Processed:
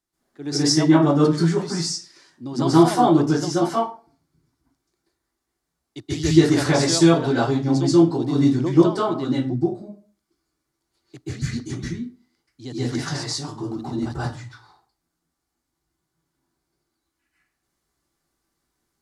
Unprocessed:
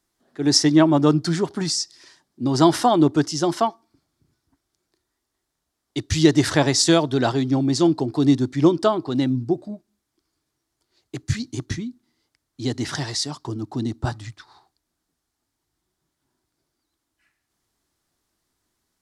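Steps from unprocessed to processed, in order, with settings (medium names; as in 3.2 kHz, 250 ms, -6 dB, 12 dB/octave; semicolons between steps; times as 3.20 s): 13.56–14.18 s: transient shaper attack -6 dB, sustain +10 dB; reverberation RT60 0.40 s, pre-delay 123 ms, DRR -9.5 dB; trim -10.5 dB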